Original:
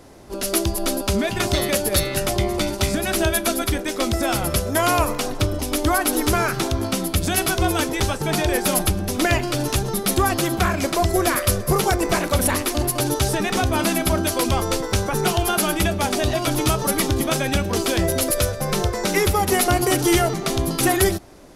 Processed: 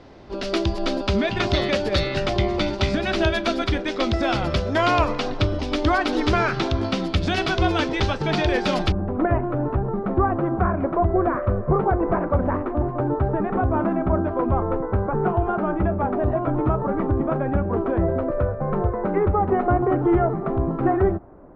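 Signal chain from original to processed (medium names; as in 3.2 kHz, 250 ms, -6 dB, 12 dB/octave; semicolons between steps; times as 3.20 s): low-pass 4.5 kHz 24 dB/octave, from 8.92 s 1.3 kHz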